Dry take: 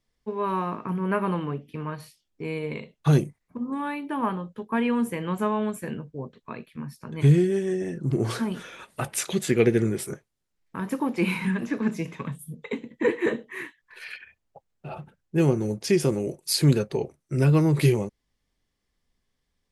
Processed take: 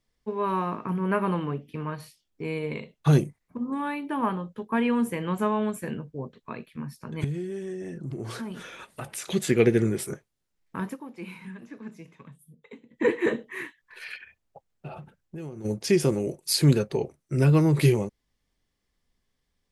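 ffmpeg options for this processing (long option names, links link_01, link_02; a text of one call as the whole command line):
ffmpeg -i in.wav -filter_complex "[0:a]asettb=1/sr,asplit=3[link_01][link_02][link_03];[link_01]atrim=end=7.244[link_04];[link_02]atrim=start=7.24:end=9.3,asetpts=PTS-STARTPTS,afade=type=in:duration=0.004:curve=qsin,afade=type=out:start_time=2.056:duration=0.004:curve=qsin,acompressor=threshold=-35dB:ratio=2.5:attack=3.2:release=140:knee=1:detection=peak[link_05];[link_03]atrim=start=9.296[link_06];[link_04][link_05]acrossfade=duration=0.004:curve1=hsin:curve2=qsin[link_07];[link_07][link_06]acrossfade=duration=0.004:curve1=qsin:curve2=hsin,asplit=3[link_08][link_09][link_10];[link_08]afade=type=out:start_time=14.87:duration=0.02[link_11];[link_09]acompressor=threshold=-36dB:ratio=6:attack=3.2:release=140:knee=1:detection=peak,afade=type=in:start_time=14.87:duration=0.02,afade=type=out:start_time=15.64:duration=0.02[link_12];[link_10]afade=type=in:start_time=15.64:duration=0.02[link_13];[link_11][link_12][link_13]amix=inputs=3:normalize=0,asplit=3[link_14][link_15][link_16];[link_14]atrim=end=10.97,asetpts=PTS-STARTPTS,afade=type=out:start_time=10.83:duration=0.14:silence=0.177828[link_17];[link_15]atrim=start=10.97:end=12.88,asetpts=PTS-STARTPTS,volume=-15dB[link_18];[link_16]atrim=start=12.88,asetpts=PTS-STARTPTS,afade=type=in:duration=0.14:silence=0.177828[link_19];[link_17][link_18][link_19]concat=n=3:v=0:a=1" out.wav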